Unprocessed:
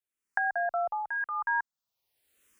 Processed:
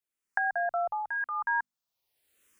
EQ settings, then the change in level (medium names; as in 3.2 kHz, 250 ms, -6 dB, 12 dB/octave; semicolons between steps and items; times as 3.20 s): hum notches 50/100/150/200/250 Hz; 0.0 dB